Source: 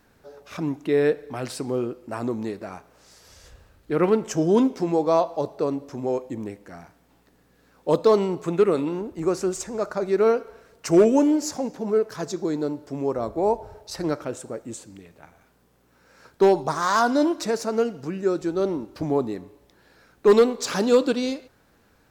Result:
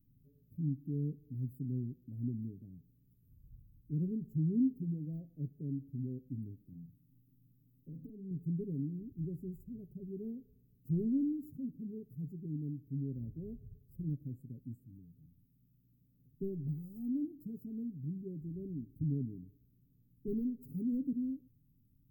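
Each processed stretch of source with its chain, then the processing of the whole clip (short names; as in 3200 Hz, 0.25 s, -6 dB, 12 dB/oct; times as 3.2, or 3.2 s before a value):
6.62–8.31 compressor 4:1, threshold -29 dBFS + doubler 42 ms -6 dB
whole clip: inverse Chebyshev band-stop 830–6400 Hz, stop band 70 dB; band shelf 4200 Hz +15 dB; comb 7.4 ms, depth 57%; gain -4 dB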